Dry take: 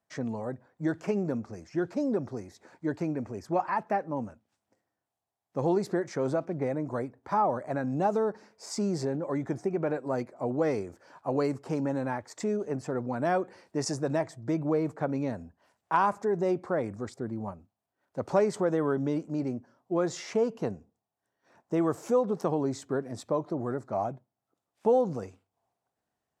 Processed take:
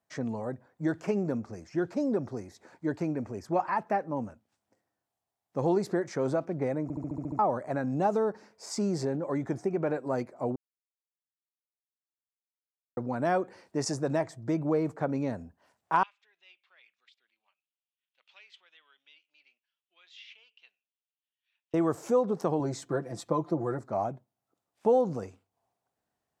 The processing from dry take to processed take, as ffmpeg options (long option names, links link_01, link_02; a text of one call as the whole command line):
ffmpeg -i in.wav -filter_complex "[0:a]asettb=1/sr,asplit=3[link_01][link_02][link_03];[link_01]atrim=end=16.034[link_04];[link_02]atrim=start=16.03:end=21.74,asetpts=PTS-STARTPTS,afade=type=in:duration=0.004:curve=qsin,afade=type=out:start_time=5.706:duration=0.004:curve=qsin,asuperpass=centerf=3000:order=4:qfactor=2.7[link_05];[link_03]atrim=start=21.736[link_06];[link_04][link_05]acrossfade=duration=0.004:curve1=hsin:curve2=qsin[link_07];[link_07][link_06]acrossfade=duration=0.004:curve1=qsin:curve2=hsin,asettb=1/sr,asplit=3[link_08][link_09][link_10];[link_08]atrim=end=22.594[link_11];[link_09]atrim=start=22.59:end=23.79,asetpts=PTS-STARTPTS,afade=type=in:duration=0.004:curve=qsin,afade=type=out:start_time=1.196:duration=0.004:curve=qsin,aecho=1:1:5.9:0.65,atrim=end_sample=52920[link_12];[link_10]atrim=start=23.786[link_13];[link_11][link_12]acrossfade=duration=0.004:curve1=hsin:curve2=qsin[link_14];[link_14][link_13]acrossfade=duration=0.004:curve1=qsin:curve2=hsin,asplit=11[link_15][link_16][link_17][link_18][link_19][link_20][link_21][link_22][link_23][link_24][link_25];[link_15]atrim=end=6.902[link_26];[link_16]atrim=start=6.828:end=6.902[link_27];[link_17]atrim=start=6.828:end=6.902[link_28];[link_18]atrim=start=6.828:end=6.902[link_29];[link_19]atrim=start=6.828:end=6.902[link_30];[link_20]atrim=start=6.828:end=6.902[link_31];[link_21]atrim=start=6.828:end=6.902[link_32];[link_22]atrim=start=6.828:end=6.902[link_33];[link_23]atrim=start=7.388:end=10.56,asetpts=PTS-STARTPTS,afade=type=out:start_time=3.168:duration=0.004:curve=hsin[link_34];[link_24]atrim=start=10.56:end=12.97,asetpts=PTS-STARTPTS,volume=0[link_35];[link_25]atrim=start=12.97,asetpts=PTS-STARTPTS,afade=type=in:duration=0.004:curve=hsin[link_36];[link_26][link_27]acrossfade=duration=0.004:curve1=hsin:curve2=hsin[link_37];[link_37][link_28]acrossfade=duration=0.004:curve1=hsin:curve2=hsin[link_38];[link_38][link_29]acrossfade=duration=0.004:curve1=hsin:curve2=hsin[link_39];[link_39][link_30]acrossfade=duration=0.004:curve1=hsin:curve2=hsin[link_40];[link_40][link_31]acrossfade=duration=0.004:curve1=hsin:curve2=hsin[link_41];[link_41][link_32]acrossfade=duration=0.004:curve1=hsin:curve2=hsin[link_42];[link_42][link_33]acrossfade=duration=0.004:curve1=hsin:curve2=hsin[link_43];[link_34][link_35][link_36]concat=n=3:v=0:a=1[link_44];[link_43][link_44]acrossfade=duration=0.004:curve1=hsin:curve2=hsin" out.wav